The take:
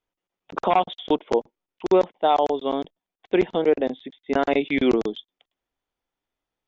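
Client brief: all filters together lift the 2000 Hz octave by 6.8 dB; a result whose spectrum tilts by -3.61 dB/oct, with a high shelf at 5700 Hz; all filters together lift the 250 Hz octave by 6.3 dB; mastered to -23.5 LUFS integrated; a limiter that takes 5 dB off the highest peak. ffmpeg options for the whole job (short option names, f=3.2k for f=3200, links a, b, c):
-af "equalizer=f=250:t=o:g=8,equalizer=f=2k:t=o:g=7.5,highshelf=f=5.7k:g=4,volume=-2dB,alimiter=limit=-11dB:level=0:latency=1"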